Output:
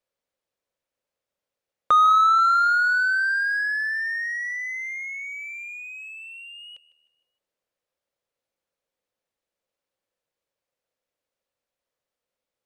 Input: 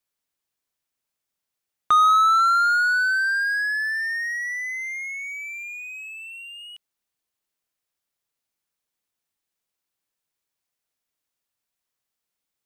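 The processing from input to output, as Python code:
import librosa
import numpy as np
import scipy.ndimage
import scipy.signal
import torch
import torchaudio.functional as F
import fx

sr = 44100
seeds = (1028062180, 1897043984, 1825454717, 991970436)

y = fx.lowpass(x, sr, hz=3300.0, slope=6)
y = fx.peak_eq(y, sr, hz=530.0, db=13.5, octaves=0.47)
y = fx.echo_feedback(y, sr, ms=154, feedback_pct=43, wet_db=-18.0)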